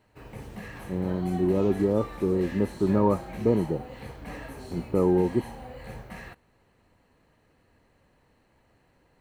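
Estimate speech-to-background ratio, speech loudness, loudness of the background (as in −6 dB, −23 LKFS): 14.5 dB, −26.0 LKFS, −40.5 LKFS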